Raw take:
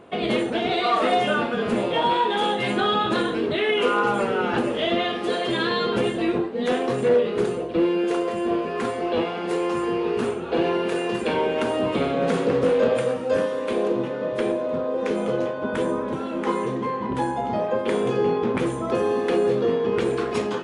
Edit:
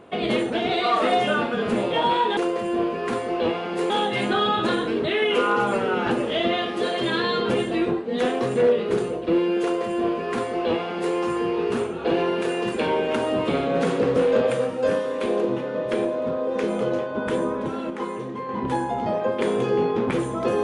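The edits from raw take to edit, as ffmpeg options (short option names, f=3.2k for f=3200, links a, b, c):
-filter_complex "[0:a]asplit=5[a][b][c][d][e];[a]atrim=end=2.372[f];[b]atrim=start=8.088:end=9.622[g];[c]atrim=start=2.368:end=16.372[h];[d]atrim=start=16.368:end=16.962,asetpts=PTS-STARTPTS,volume=-5.5dB[i];[e]atrim=start=16.958[j];[f][g]acrossfade=d=0.004:c1=hsin:c2=hsin[k];[k][h]acrossfade=d=0.004:c1=hsin:c2=hsin[l];[l][i]acrossfade=d=0.004:c1=hsin:c2=hsin[m];[m][j]acrossfade=d=0.004:c1=hsin:c2=hsin"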